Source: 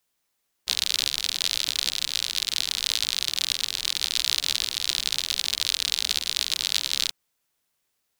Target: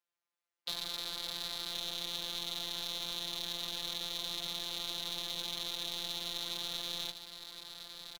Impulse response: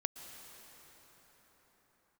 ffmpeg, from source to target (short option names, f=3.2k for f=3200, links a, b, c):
-filter_complex "[0:a]agate=range=-27dB:threshold=-41dB:ratio=16:detection=peak,asplit=2[a][b];[b]highpass=f=720:p=1,volume=27dB,asoftclip=type=tanh:threshold=-2dB[c];[a][c]amix=inputs=2:normalize=0,lowpass=f=1.6k:p=1,volume=-6dB,afftfilt=real='hypot(re,im)*cos(PI*b)':imag='0':win_size=1024:overlap=0.75,acrossover=split=100|1200|7800[d][e][f][g];[d]acompressor=threshold=-57dB:ratio=4[h];[e]acompressor=threshold=-52dB:ratio=4[i];[f]acompressor=threshold=-38dB:ratio=4[j];[g]acompressor=threshold=-48dB:ratio=4[k];[h][i][j][k]amix=inputs=4:normalize=0,asplit=2[l][m];[m]aecho=0:1:1062:0.376[n];[l][n]amix=inputs=2:normalize=0,volume=1dB"